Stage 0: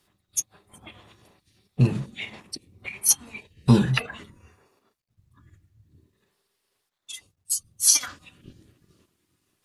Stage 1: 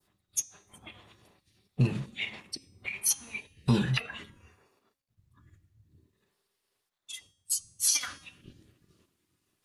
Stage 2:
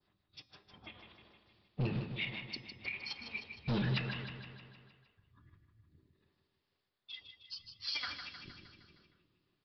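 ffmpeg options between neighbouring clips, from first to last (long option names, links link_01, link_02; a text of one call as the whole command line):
ffmpeg -i in.wav -af "adynamicequalizer=threshold=0.00891:dfrequency=2700:dqfactor=0.83:tfrequency=2700:tqfactor=0.83:attack=5:release=100:ratio=0.375:range=3.5:mode=boostabove:tftype=bell,bandreject=frequency=272:width_type=h:width=4,bandreject=frequency=544:width_type=h:width=4,bandreject=frequency=816:width_type=h:width=4,bandreject=frequency=1088:width_type=h:width=4,bandreject=frequency=1360:width_type=h:width=4,bandreject=frequency=1632:width_type=h:width=4,bandreject=frequency=1904:width_type=h:width=4,bandreject=frequency=2176:width_type=h:width=4,bandreject=frequency=2448:width_type=h:width=4,bandreject=frequency=2720:width_type=h:width=4,bandreject=frequency=2992:width_type=h:width=4,bandreject=frequency=3264:width_type=h:width=4,bandreject=frequency=3536:width_type=h:width=4,bandreject=frequency=3808:width_type=h:width=4,bandreject=frequency=4080:width_type=h:width=4,bandreject=frequency=4352:width_type=h:width=4,bandreject=frequency=4624:width_type=h:width=4,bandreject=frequency=4896:width_type=h:width=4,bandreject=frequency=5168:width_type=h:width=4,bandreject=frequency=5440:width_type=h:width=4,bandreject=frequency=5712:width_type=h:width=4,bandreject=frequency=5984:width_type=h:width=4,bandreject=frequency=6256:width_type=h:width=4,bandreject=frequency=6528:width_type=h:width=4,bandreject=frequency=6800:width_type=h:width=4,bandreject=frequency=7072:width_type=h:width=4,bandreject=frequency=7344:width_type=h:width=4,bandreject=frequency=7616:width_type=h:width=4,bandreject=frequency=7888:width_type=h:width=4,bandreject=frequency=8160:width_type=h:width=4,bandreject=frequency=8432:width_type=h:width=4,bandreject=frequency=8704:width_type=h:width=4,bandreject=frequency=8976:width_type=h:width=4,bandreject=frequency=9248:width_type=h:width=4,bandreject=frequency=9520:width_type=h:width=4,bandreject=frequency=9792:width_type=h:width=4,bandreject=frequency=10064:width_type=h:width=4,alimiter=limit=-9.5dB:level=0:latency=1:release=215,volume=-4.5dB" out.wav
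ffmpeg -i in.wav -af "aresample=11025,asoftclip=type=hard:threshold=-26.5dB,aresample=44100,aecho=1:1:155|310|465|620|775|930|1085:0.398|0.235|0.139|0.0818|0.0482|0.0285|0.0168,volume=-3.5dB" out.wav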